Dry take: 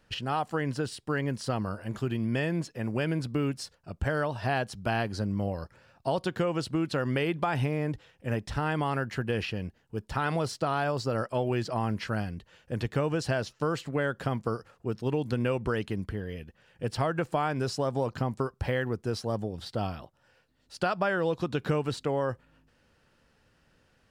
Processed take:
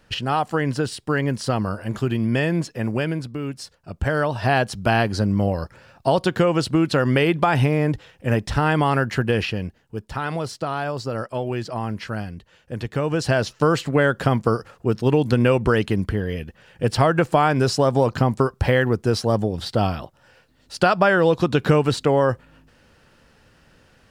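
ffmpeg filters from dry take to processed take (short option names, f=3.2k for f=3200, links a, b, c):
-af "volume=27.5dB,afade=t=out:st=2.84:d=0.52:silence=0.354813,afade=t=in:st=3.36:d=1.26:silence=0.281838,afade=t=out:st=9.18:d=0.92:silence=0.421697,afade=t=in:st=12.9:d=0.64:silence=0.375837"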